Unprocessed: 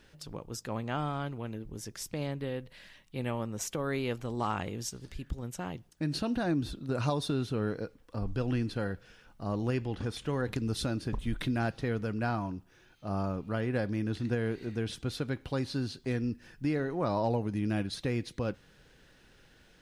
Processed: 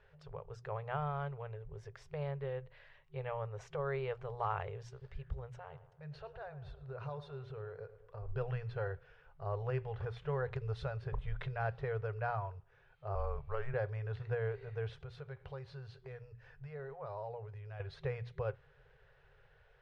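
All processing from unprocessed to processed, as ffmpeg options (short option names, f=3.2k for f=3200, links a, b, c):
-filter_complex "[0:a]asettb=1/sr,asplit=3[a][b][c];[a]atrim=end=5.564[d];[b]atrim=start=5.56:end=8.28,asetpts=PTS-STARTPTS,afade=t=in:d=0.004:c=qsin,afade=t=out:st=2.716:d=0.004:c=qsin,acompressor=threshold=-42dB:ratio=2:attack=3.2:release=140:knee=1:detection=peak,asplit=2[e][f];[f]adelay=108,lowpass=f=2.1k:p=1,volume=-13dB,asplit=2[g][h];[h]adelay=108,lowpass=f=2.1k:p=1,volume=0.54,asplit=2[i][j];[j]adelay=108,lowpass=f=2.1k:p=1,volume=0.54,asplit=2[k][l];[l]adelay=108,lowpass=f=2.1k:p=1,volume=0.54,asplit=2[m][n];[n]adelay=108,lowpass=f=2.1k:p=1,volume=0.54,asplit=2[o][p];[p]adelay=108,lowpass=f=2.1k:p=1,volume=0.54[q];[e][g][i][k][m][o][q]amix=inputs=7:normalize=0,atrim=end_sample=119952[r];[c]atrim=start=8.276[s];[d][r]acrossfade=d=0.004:c1=hsin:c2=qsin[t];[t][s]acrossfade=d=0.004:c1=qsin:c2=hsin,asettb=1/sr,asplit=3[u][v][w];[u]atrim=end=13.154[x];[v]atrim=start=13.15:end=13.74,asetpts=PTS-STARTPTS,afade=t=in:d=0.004:c=qsin,afade=t=out:st=0.586:d=0.004:c=qsin,afreqshift=-120,equalizer=f=110:t=o:w=0.24:g=-11.5[y];[w]atrim=start=13.736[z];[x][y]acrossfade=d=0.004:c1=hsin:c2=qsin[aa];[aa][z]acrossfade=d=0.004:c1=qsin:c2=hsin,asettb=1/sr,asplit=3[ab][ac][ad];[ab]atrim=end=15.004[ae];[ac]atrim=start=15:end=17.8,asetpts=PTS-STARTPTS,afade=t=in:d=0.004:c=qsin,afade=t=out:st=2.796:d=0.004:c=qsin,highshelf=f=6.1k:g=7,acompressor=threshold=-40dB:ratio=2.5:attack=3.2:release=140:knee=1:detection=peak[af];[ad]atrim=start=17.796[ag];[ae][af]acrossfade=d=0.004:c1=hsin:c2=qsin[ah];[ah][ag]acrossfade=d=0.004:c1=qsin:c2=hsin,afftfilt=real='re*(1-between(b*sr/4096,160,380))':imag='im*(1-between(b*sr/4096,160,380))':win_size=4096:overlap=0.75,lowpass=1.8k,bandreject=f=60:t=h:w=6,bandreject=f=120:t=h:w=6,volume=-2.5dB"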